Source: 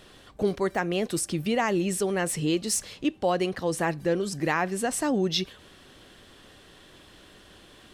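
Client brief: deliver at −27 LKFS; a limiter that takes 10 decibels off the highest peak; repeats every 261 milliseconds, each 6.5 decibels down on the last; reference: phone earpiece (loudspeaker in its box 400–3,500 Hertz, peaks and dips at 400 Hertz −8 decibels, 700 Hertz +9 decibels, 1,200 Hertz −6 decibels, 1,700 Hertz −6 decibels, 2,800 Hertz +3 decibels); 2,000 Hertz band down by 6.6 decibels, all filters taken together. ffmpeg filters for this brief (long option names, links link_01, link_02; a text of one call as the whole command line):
ffmpeg -i in.wav -af "equalizer=frequency=2000:width_type=o:gain=-4.5,alimiter=limit=-24dB:level=0:latency=1,highpass=400,equalizer=frequency=400:width_type=q:width=4:gain=-8,equalizer=frequency=700:width_type=q:width=4:gain=9,equalizer=frequency=1200:width_type=q:width=4:gain=-6,equalizer=frequency=1700:width_type=q:width=4:gain=-6,equalizer=frequency=2800:width_type=q:width=4:gain=3,lowpass=frequency=3500:width=0.5412,lowpass=frequency=3500:width=1.3066,aecho=1:1:261|522|783|1044|1305|1566:0.473|0.222|0.105|0.0491|0.0231|0.0109,volume=9.5dB" out.wav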